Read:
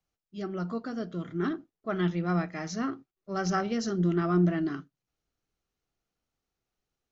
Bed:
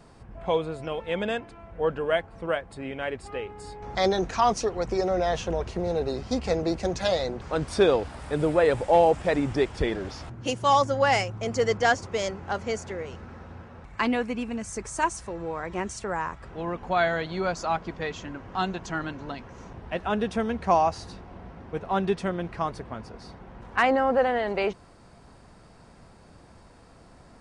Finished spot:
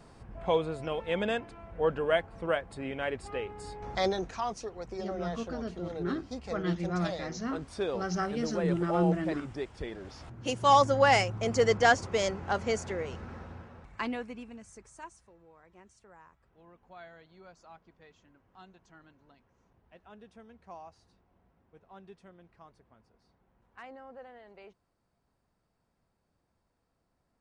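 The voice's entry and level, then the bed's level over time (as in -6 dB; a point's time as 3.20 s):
4.65 s, -3.5 dB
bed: 3.86 s -2 dB
4.49 s -12.5 dB
9.91 s -12.5 dB
10.73 s -0.5 dB
13.37 s -0.5 dB
15.47 s -26 dB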